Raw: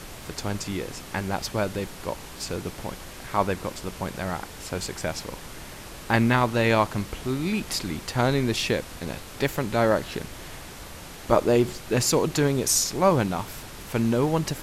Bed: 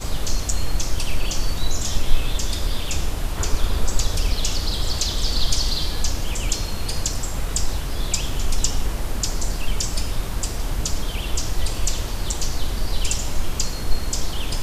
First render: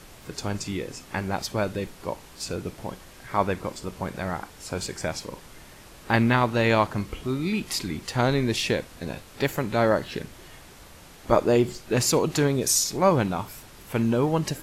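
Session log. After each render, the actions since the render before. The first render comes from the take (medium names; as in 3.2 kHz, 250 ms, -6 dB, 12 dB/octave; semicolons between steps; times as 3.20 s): noise print and reduce 7 dB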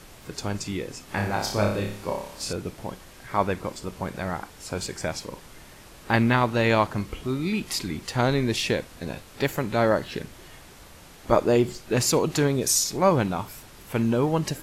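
1.05–2.53 s: flutter echo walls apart 5 m, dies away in 0.56 s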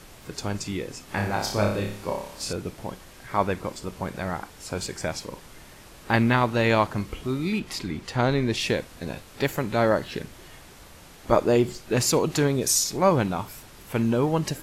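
7.58–8.60 s: treble shelf 4.8 kHz -> 8.3 kHz -9.5 dB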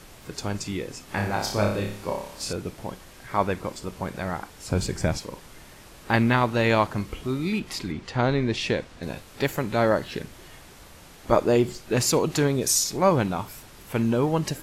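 4.68–5.18 s: bass shelf 280 Hz +12 dB; 7.92–9.03 s: distance through air 59 m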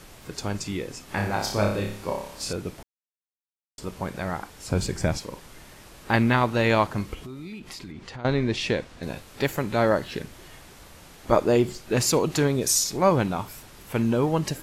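2.83–3.78 s: mute; 7.14–8.25 s: compression 5:1, threshold -36 dBFS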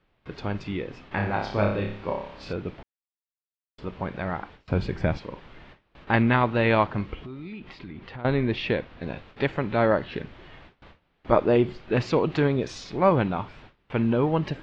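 low-pass 3.4 kHz 24 dB/octave; gate with hold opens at -37 dBFS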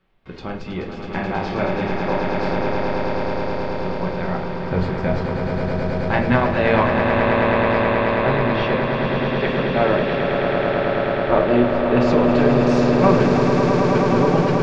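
echo with a slow build-up 107 ms, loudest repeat 8, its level -6.5 dB; simulated room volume 190 m³, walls furnished, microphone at 1.1 m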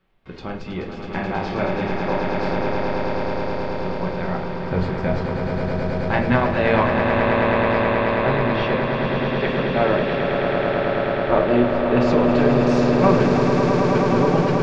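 trim -1 dB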